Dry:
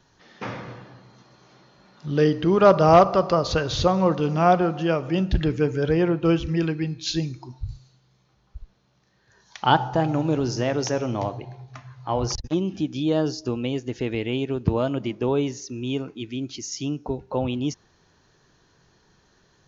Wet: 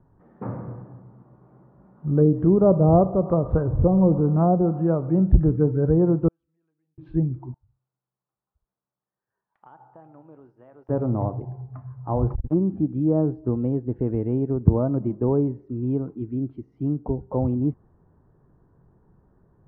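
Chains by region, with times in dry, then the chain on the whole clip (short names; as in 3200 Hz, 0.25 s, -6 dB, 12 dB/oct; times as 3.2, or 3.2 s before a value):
3.67–4.21 zero-crossing step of -30 dBFS + LPF 1000 Hz
6.28–6.98 compressor 4:1, threshold -28 dBFS + band-pass 4500 Hz, Q 12
7.54–10.89 differentiator + compressor 4:1, threshold -39 dBFS
whole clip: treble ducked by the level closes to 650 Hz, closed at -14.5 dBFS; LPF 1200 Hz 24 dB/oct; low shelf 350 Hz +11.5 dB; gain -4.5 dB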